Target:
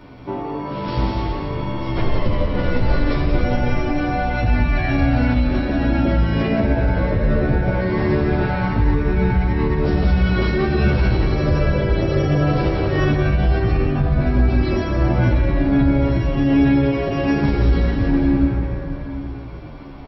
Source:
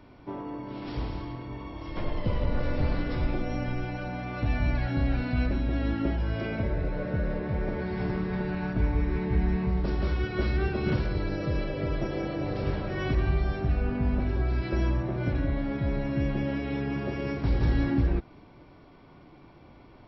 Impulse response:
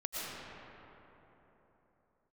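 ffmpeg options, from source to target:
-filter_complex "[0:a]aecho=1:1:176:0.473,asplit=2[s0][s1];[1:a]atrim=start_sample=2205,adelay=108[s2];[s1][s2]afir=irnorm=-1:irlink=0,volume=0.376[s3];[s0][s3]amix=inputs=2:normalize=0,alimiter=level_in=8.91:limit=0.891:release=50:level=0:latency=1,asplit=2[s4][s5];[s5]adelay=11.6,afreqshift=-1.2[s6];[s4][s6]amix=inputs=2:normalize=1,volume=0.562"

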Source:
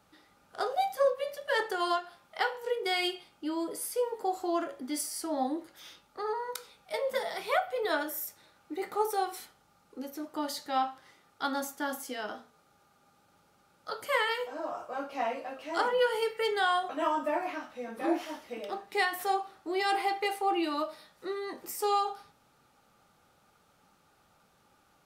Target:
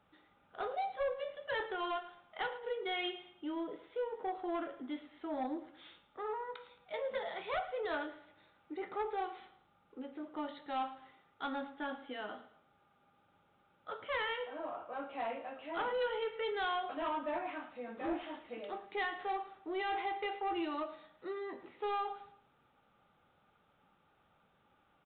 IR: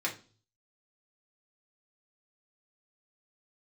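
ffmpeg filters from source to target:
-af "aresample=8000,asoftclip=type=tanh:threshold=0.0562,aresample=44100,aecho=1:1:110|220|330:0.158|0.0618|0.0241,volume=0.562"

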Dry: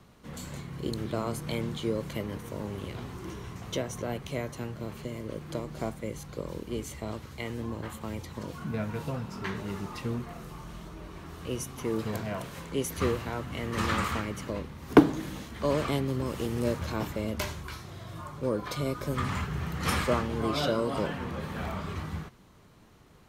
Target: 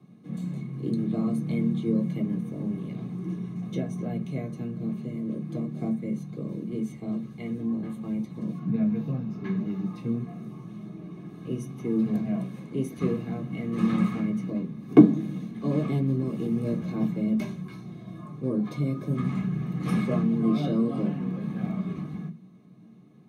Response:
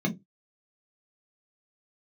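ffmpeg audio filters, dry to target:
-filter_complex "[0:a]asetnsamples=n=441:p=0,asendcmd='8.59 equalizer g -5.5;9.86 equalizer g 6',equalizer=f=8900:w=2.2:g=8[s0];[1:a]atrim=start_sample=2205[s1];[s0][s1]afir=irnorm=-1:irlink=0,volume=0.178"

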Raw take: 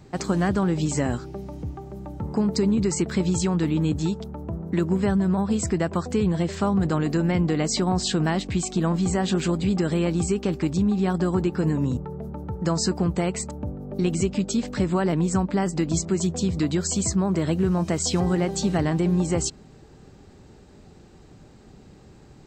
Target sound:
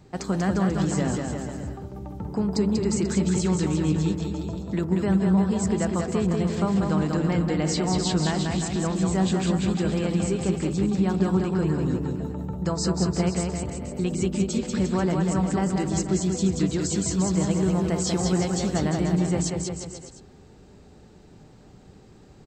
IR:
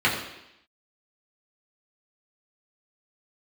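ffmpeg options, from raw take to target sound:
-filter_complex "[0:a]aecho=1:1:190|351.5|488.8|605.5|704.6:0.631|0.398|0.251|0.158|0.1,asplit=2[s0][s1];[1:a]atrim=start_sample=2205,lowpass=1400[s2];[s1][s2]afir=irnorm=-1:irlink=0,volume=0.0422[s3];[s0][s3]amix=inputs=2:normalize=0,volume=0.668"

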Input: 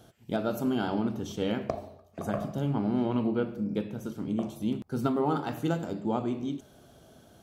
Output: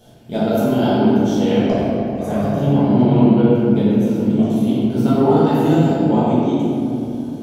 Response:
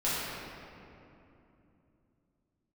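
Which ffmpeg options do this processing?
-filter_complex "[0:a]equalizer=f=1300:w=2.9:g=-9.5[s0];[1:a]atrim=start_sample=2205[s1];[s0][s1]afir=irnorm=-1:irlink=0,volume=1.5"

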